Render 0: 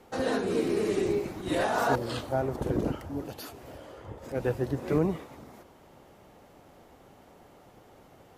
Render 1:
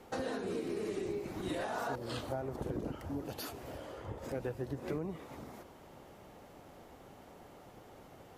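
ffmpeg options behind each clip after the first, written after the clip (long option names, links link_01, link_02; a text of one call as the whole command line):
ffmpeg -i in.wav -af "acompressor=threshold=-35dB:ratio=6" out.wav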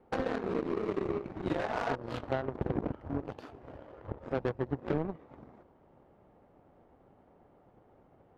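ffmpeg -i in.wav -af "adynamicsmooth=sensitivity=5.5:basefreq=1400,aeval=exprs='0.0668*(cos(1*acos(clip(val(0)/0.0668,-1,1)))-cos(1*PI/2))+0.0075*(cos(7*acos(clip(val(0)/0.0668,-1,1)))-cos(7*PI/2))':channel_layout=same,volume=7dB" out.wav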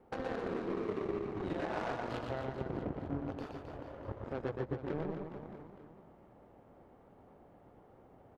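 ffmpeg -i in.wav -af "alimiter=level_in=3dB:limit=-24dB:level=0:latency=1:release=276,volume=-3dB,aecho=1:1:120|264|436.8|644.2|893:0.631|0.398|0.251|0.158|0.1" out.wav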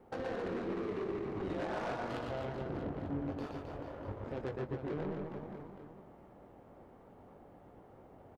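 ffmpeg -i in.wav -filter_complex "[0:a]asoftclip=type=tanh:threshold=-34dB,asplit=2[link_01][link_02];[link_02]adelay=21,volume=-10.5dB[link_03];[link_01][link_03]amix=inputs=2:normalize=0,volume=2.5dB" out.wav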